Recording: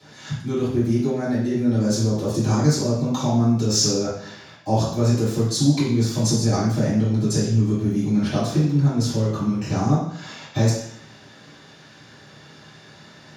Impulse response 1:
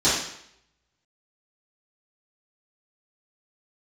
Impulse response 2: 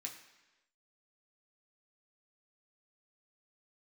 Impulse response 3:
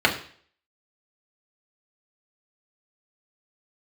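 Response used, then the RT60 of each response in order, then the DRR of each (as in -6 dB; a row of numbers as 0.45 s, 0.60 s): 1; 0.70 s, 1.1 s, 0.50 s; -13.5 dB, -0.5 dB, -1.5 dB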